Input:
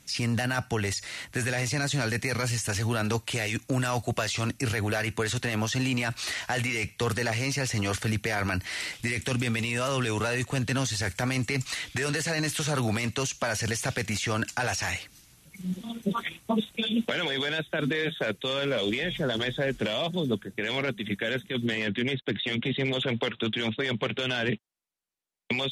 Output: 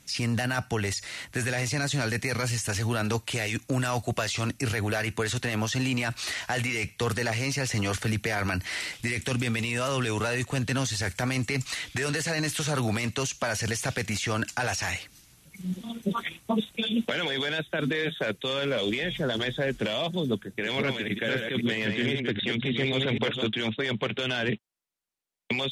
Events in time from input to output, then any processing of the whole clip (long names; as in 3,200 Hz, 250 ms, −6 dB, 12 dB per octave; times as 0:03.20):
0:07.71–0:08.80: multiband upward and downward compressor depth 40%
0:20.31–0:23.47: delay that plays each chunk backwards 261 ms, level −4 dB